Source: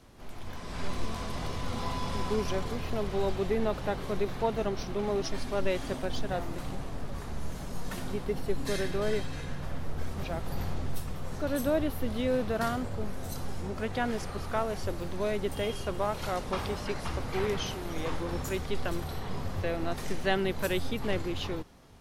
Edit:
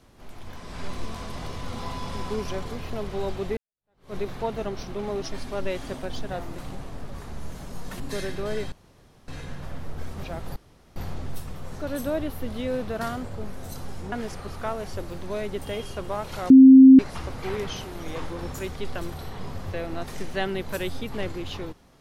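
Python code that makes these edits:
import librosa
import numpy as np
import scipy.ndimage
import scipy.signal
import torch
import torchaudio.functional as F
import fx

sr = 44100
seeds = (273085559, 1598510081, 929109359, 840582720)

y = fx.edit(x, sr, fx.fade_in_span(start_s=3.57, length_s=0.58, curve='exp'),
    fx.cut(start_s=8.0, length_s=0.56),
    fx.insert_room_tone(at_s=9.28, length_s=0.56),
    fx.insert_room_tone(at_s=10.56, length_s=0.4),
    fx.cut(start_s=13.72, length_s=0.3),
    fx.bleep(start_s=16.4, length_s=0.49, hz=264.0, db=-6.0), tone=tone)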